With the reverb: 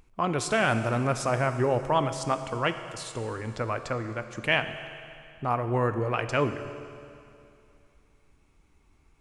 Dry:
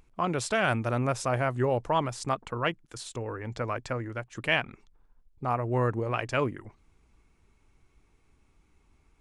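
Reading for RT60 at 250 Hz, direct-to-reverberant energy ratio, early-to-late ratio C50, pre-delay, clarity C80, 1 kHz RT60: 2.7 s, 9.0 dB, 10.0 dB, 14 ms, 10.5 dB, 2.6 s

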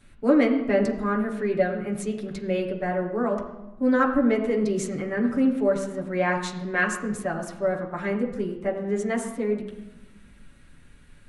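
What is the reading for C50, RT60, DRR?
8.0 dB, 1.1 s, -5.5 dB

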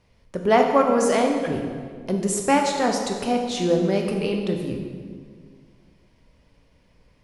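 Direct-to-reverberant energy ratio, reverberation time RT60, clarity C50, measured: 2.0 dB, 1.9 s, 4.0 dB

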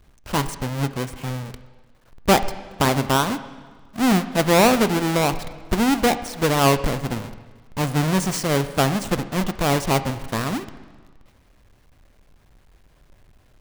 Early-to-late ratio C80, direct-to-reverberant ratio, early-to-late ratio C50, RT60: 14.5 dB, 11.5 dB, 13.5 dB, 1.5 s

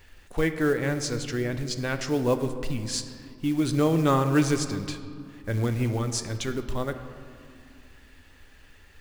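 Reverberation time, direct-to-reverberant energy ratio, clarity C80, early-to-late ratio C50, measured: 2.3 s, 8.0 dB, 11.0 dB, 10.0 dB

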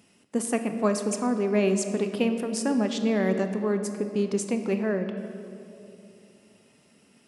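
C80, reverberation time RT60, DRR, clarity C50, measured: 9.0 dB, 2.8 s, 7.0 dB, 8.0 dB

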